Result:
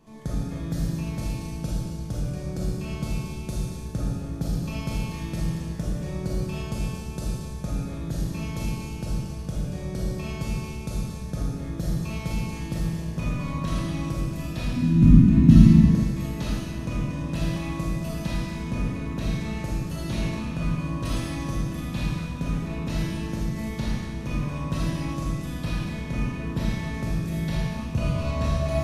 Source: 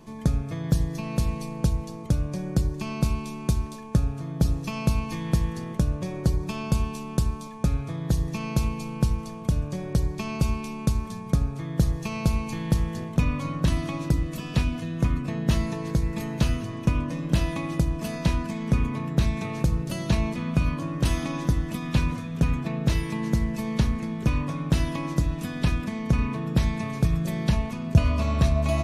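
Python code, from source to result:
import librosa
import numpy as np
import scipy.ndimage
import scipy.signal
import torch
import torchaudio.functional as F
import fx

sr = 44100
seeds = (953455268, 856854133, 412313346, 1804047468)

y = fx.low_shelf_res(x, sr, hz=340.0, db=12.5, q=3.0, at=(14.76, 15.79))
y = fx.rev_freeverb(y, sr, rt60_s=1.5, hf_ratio=1.0, predelay_ms=0, drr_db=-6.5)
y = y * librosa.db_to_amplitude(-9.0)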